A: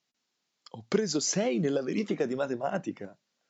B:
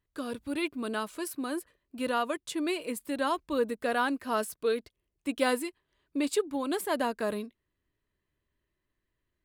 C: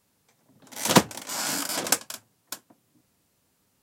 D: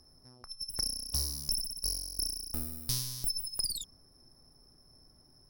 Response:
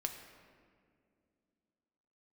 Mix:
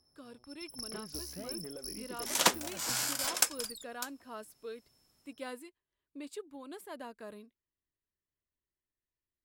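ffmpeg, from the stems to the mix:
-filter_complex "[0:a]lowpass=3.9k,asoftclip=type=hard:threshold=-21dB,volume=-17.5dB[a];[1:a]volume=-15.5dB[b];[2:a]highpass=f=1.1k:p=1,adelay=1500,volume=-4dB[c];[3:a]highpass=f=85:p=1,volume=-10dB[d];[a][b][c][d]amix=inputs=4:normalize=0"

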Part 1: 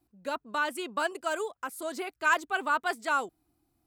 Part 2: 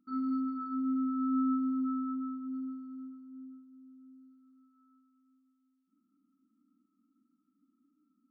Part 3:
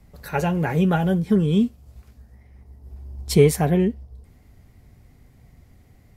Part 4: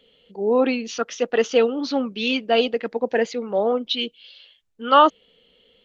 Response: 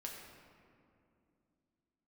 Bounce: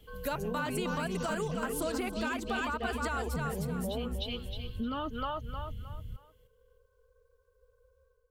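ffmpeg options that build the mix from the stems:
-filter_complex "[0:a]volume=2.5dB,asplit=2[a][b];[b]volume=-4.5dB[c];[1:a]acompressor=threshold=-41dB:ratio=6,aeval=exprs='val(0)*sin(2*PI*230*n/s)':c=same,volume=-0.5dB[d];[2:a]lowshelf=f=170:g=11,asoftclip=type=tanh:threshold=-9.5dB,aemphasis=mode=production:type=75fm,volume=-15.5dB,asplit=2[e][f];[f]volume=-8.5dB[g];[3:a]aecho=1:1:4.7:0.43,alimiter=limit=-11.5dB:level=0:latency=1:release=307,volume=-7.5dB,asplit=2[h][i];[i]volume=-3dB[j];[a][d]amix=inputs=2:normalize=0,dynaudnorm=f=150:g=5:m=10.5dB,alimiter=limit=-17dB:level=0:latency=1:release=139,volume=0dB[k];[e][h]amix=inputs=2:normalize=0,asubboost=boost=11:cutoff=220,acompressor=threshold=-27dB:ratio=4,volume=0dB[l];[c][g][j]amix=inputs=3:normalize=0,aecho=0:1:310|620|930|1240:1|0.29|0.0841|0.0244[m];[k][l][m]amix=inputs=3:normalize=0,acompressor=threshold=-32dB:ratio=4"

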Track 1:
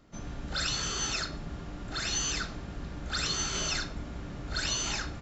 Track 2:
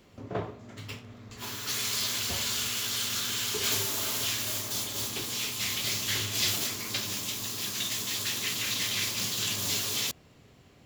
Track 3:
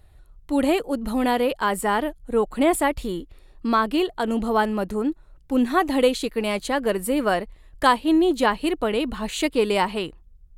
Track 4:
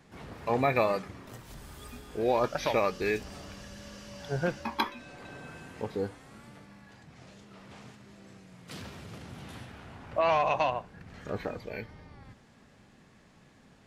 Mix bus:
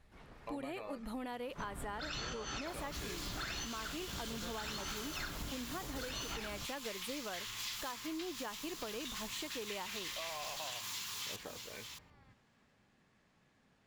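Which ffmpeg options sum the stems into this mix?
-filter_complex "[0:a]highshelf=f=4.6k:g=-12,adelay=1450,volume=2.5dB[a];[1:a]lowshelf=f=760:t=q:w=3:g=-7.5,adelay=1250,volume=-11.5dB,asplit=2[b][c];[c]volume=-11dB[d];[2:a]alimiter=limit=-14.5dB:level=0:latency=1:release=381,volume=-14dB,asplit=2[e][f];[3:a]alimiter=limit=-20.5dB:level=0:latency=1:release=370,volume=-14dB[g];[f]apad=whole_len=293883[h];[a][h]sidechaincompress=threshold=-48dB:ratio=3:attack=50:release=154[i];[d]aecho=0:1:624:1[j];[i][b][e][g][j]amix=inputs=5:normalize=0,equalizer=f=2k:w=0.37:g=4,acompressor=threshold=-39dB:ratio=6"

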